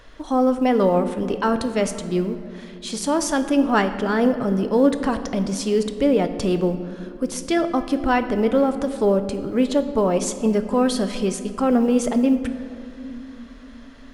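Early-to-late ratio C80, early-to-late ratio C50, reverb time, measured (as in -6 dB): 11.5 dB, 10.5 dB, 2.8 s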